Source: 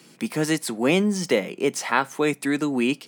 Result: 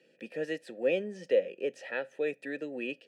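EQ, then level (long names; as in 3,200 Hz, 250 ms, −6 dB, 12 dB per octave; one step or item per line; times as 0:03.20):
formant filter e
low-shelf EQ 150 Hz +10 dB
notch filter 2,100 Hz, Q 6.7
0.0 dB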